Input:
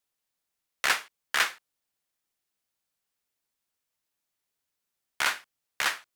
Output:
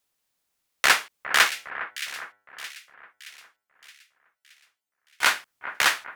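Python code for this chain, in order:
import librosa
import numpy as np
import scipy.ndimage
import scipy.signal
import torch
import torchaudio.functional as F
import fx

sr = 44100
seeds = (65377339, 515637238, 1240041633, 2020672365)

y = fx.stiff_resonator(x, sr, f0_hz=99.0, decay_s=0.54, stiffness=0.002, at=(1.49, 5.22), fade=0.02)
y = fx.echo_split(y, sr, split_hz=2000.0, low_ms=408, high_ms=621, feedback_pct=52, wet_db=-12)
y = y * librosa.db_to_amplitude(6.5)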